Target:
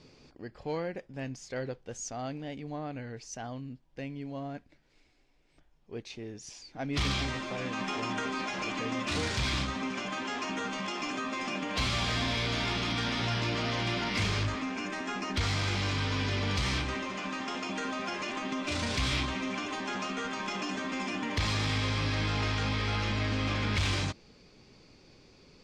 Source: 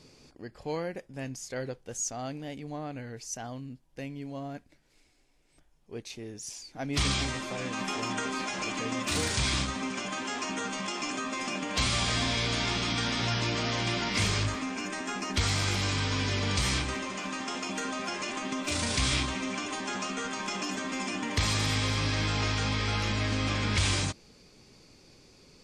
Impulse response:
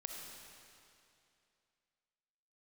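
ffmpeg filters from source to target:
-af "lowpass=4700,asoftclip=type=tanh:threshold=0.0841"

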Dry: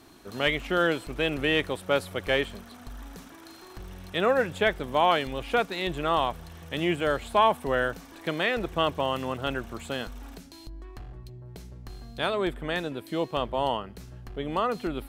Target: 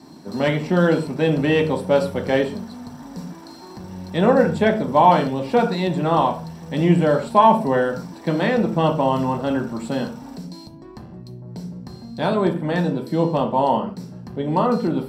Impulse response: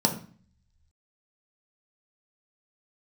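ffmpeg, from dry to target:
-filter_complex "[0:a]bandreject=f=60:t=h:w=6,bandreject=f=120:t=h:w=6[s0];[1:a]atrim=start_sample=2205,atrim=end_sample=6615[s1];[s0][s1]afir=irnorm=-1:irlink=0,volume=0.447"

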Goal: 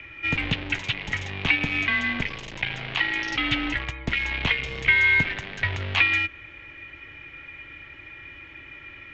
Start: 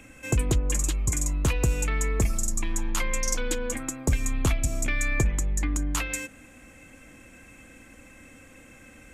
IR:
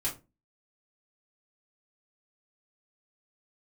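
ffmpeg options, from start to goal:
-filter_complex "[0:a]asettb=1/sr,asplit=3[s0][s1][s2];[s0]atrim=end=1.564[s3];[s1]atrim=start=1.56:end=3.32,asetpts=PTS-STARTPTS,afade=t=in:d=0.004:c=qsin,afade=t=out:st=1.756:d=0.004:c=qsin,asubboost=boost=6.5:cutoff=100[s4];[s2]atrim=start=3.316[s5];[s3][s4]acrossfade=d=0.004:c1=hsin:c2=qsin[s6];[s6][s5]acrossfade=d=0.004:c1=qsin:c2=hsin,acrossover=split=520|1000[s7][s8][s9];[s8]acompressor=threshold=0.002:ratio=6[s10];[s7][s10][s9]amix=inputs=3:normalize=0,asoftclip=type=tanh:threshold=0.2,asplit=2[s11][s12];[s12]acrusher=bits=4:mix=0:aa=0.000001,volume=0.447[s13];[s11][s13]amix=inputs=2:normalize=0,aexciter=amount=3.1:drive=6.7:freq=2100,highpass=f=250:t=q:w=0.5412,highpass=f=250:t=q:w=1.307,lowpass=f=3500:t=q:w=0.5176,lowpass=f=3500:t=q:w=0.7071,lowpass=f=3500:t=q:w=1.932,afreqshift=-200,volume=1.41"

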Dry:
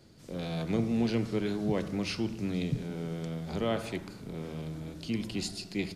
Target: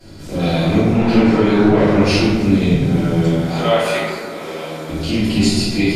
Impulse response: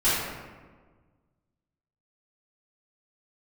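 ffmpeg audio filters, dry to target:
-filter_complex "[0:a]asettb=1/sr,asplit=3[s0][s1][s2];[s0]atrim=end=3.384[s3];[s1]atrim=start=3.38:end=4.89,asetpts=PTS-STARTPTS,afade=t=in:d=0.004:c=qsin,afade=t=out:st=1.506:d=0.004:c=qsin,highpass=580[s4];[s2]atrim=start=4.886[s5];[s3][s4]acrossfade=d=0.004:c1=hsin:c2=qsin[s6];[s6][s5]acrossfade=d=0.004:c1=qsin:c2=hsin,acompressor=threshold=0.0224:ratio=2.5,asettb=1/sr,asplit=3[s7][s8][s9];[s7]atrim=end=0.914[s10];[s8]atrim=start=0.91:end=2.02,asetpts=PTS-STARTPTS,afade=t=in:d=0.004:c=qsin,afade=t=out:st=1.106:d=0.004:c=qsin,asplit=2[s11][s12];[s12]highpass=f=720:p=1,volume=8.91,asoftclip=type=tanh:threshold=0.0531[s13];[s11][s13]amix=inputs=2:normalize=0,lowpass=f=1200:p=1,volume=0.501[s14];[s9]atrim=start=2.016[s15];[s10][s14]acrossfade=d=0.004:c1=hsin:c2=qsin[s16];[s16][s15]acrossfade=d=0.004:c1=qsin:c2=hsin[s17];[1:a]atrim=start_sample=2205,asetrate=37926,aresample=44100[s18];[s17][s18]afir=irnorm=-1:irlink=0,volume=1.68"

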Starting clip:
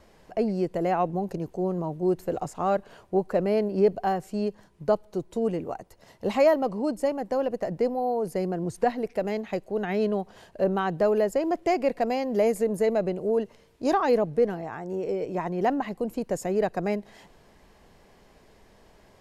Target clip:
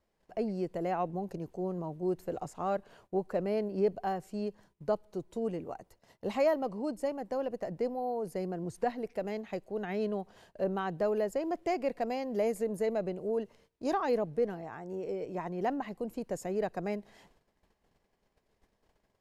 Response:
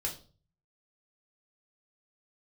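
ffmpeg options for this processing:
-af "agate=range=0.178:threshold=0.00224:ratio=16:detection=peak,volume=0.422"

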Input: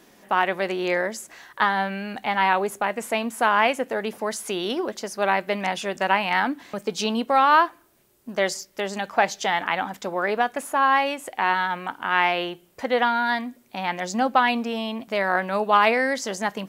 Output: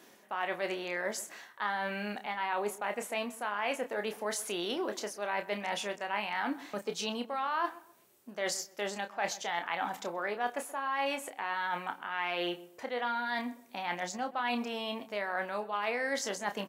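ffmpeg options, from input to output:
-filter_complex "[0:a]highpass=f=300:p=1,bandreject=f=4900:w=29,areverse,acompressor=threshold=0.0398:ratio=6,areverse,asplit=2[s0][s1];[s1]adelay=29,volume=0.398[s2];[s0][s2]amix=inputs=2:normalize=0,asplit=2[s3][s4];[s4]adelay=128,lowpass=f=1400:p=1,volume=0.141,asplit=2[s5][s6];[s6]adelay=128,lowpass=f=1400:p=1,volume=0.34,asplit=2[s7][s8];[s8]adelay=128,lowpass=f=1400:p=1,volume=0.34[s9];[s3][s5][s7][s9]amix=inputs=4:normalize=0,volume=0.708"

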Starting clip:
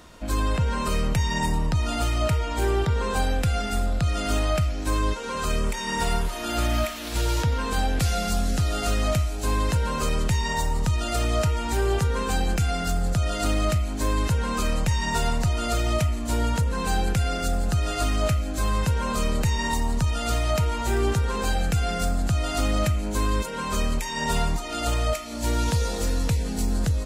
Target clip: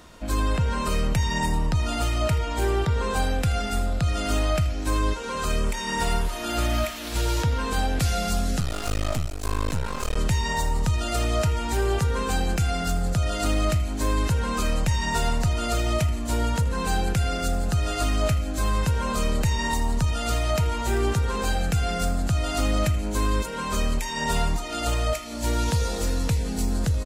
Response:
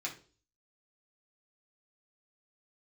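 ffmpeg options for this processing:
-filter_complex "[0:a]asplit=2[s0][s1];[s1]aecho=0:1:80:0.119[s2];[s0][s2]amix=inputs=2:normalize=0,asettb=1/sr,asplit=3[s3][s4][s5];[s3]atrim=end=8.604[s6];[s4]atrim=start=8.6:end=10.17,asetpts=PTS-STARTPTS,afade=t=in:d=0.004:c=qsin,afade=t=out:st=1.566:d=0.004:c=qsin,aeval=exprs='max(val(0),0)':c=same[s7];[s5]atrim=start=10.166[s8];[s6][s7]acrossfade=d=0.004:c1=hsin:c2=qsin[s9];[s9][s8]acrossfade=d=0.004:c1=qsin:c2=hsin"

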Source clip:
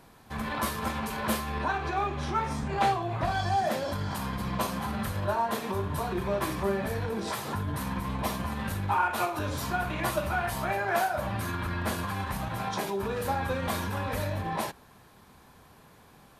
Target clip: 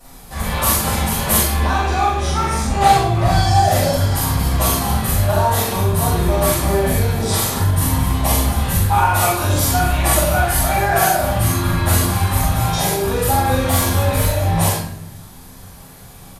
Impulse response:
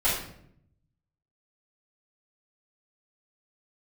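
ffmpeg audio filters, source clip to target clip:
-filter_complex "[0:a]bass=f=250:g=6,treble=f=4000:g=15,asettb=1/sr,asplit=3[s0][s1][s2];[s0]atrim=end=13.644[s3];[s1]atrim=start=13.64:end=14.39,asetpts=PTS-STARTPTS,afade=t=in:d=0.004:c=qsin,afade=t=out:st=0.746:d=0.004:c=qsin,asoftclip=type=hard:threshold=0.1[s4];[s2]atrim=start=14.386[s5];[s3][s4]acrossfade=d=0.004:c1=hsin:c2=qsin[s6];[s6][s5]acrossfade=d=0.004:c1=qsin:c2=hsin,asplit=2[s7][s8];[s8]adelay=43,volume=0.794[s9];[s7][s9]amix=inputs=2:normalize=0[s10];[1:a]atrim=start_sample=2205,asetrate=39690,aresample=44100[s11];[s10][s11]afir=irnorm=-1:irlink=0,volume=0.531"

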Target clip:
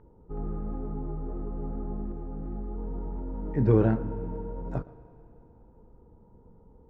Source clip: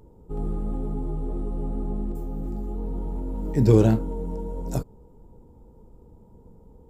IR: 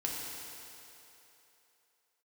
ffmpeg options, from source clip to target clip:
-filter_complex "[0:a]lowpass=f=1600:t=q:w=1.8,asplit=2[s0][s1];[1:a]atrim=start_sample=2205,lowpass=4200,adelay=115[s2];[s1][s2]afir=irnorm=-1:irlink=0,volume=0.106[s3];[s0][s3]amix=inputs=2:normalize=0,volume=0.562"

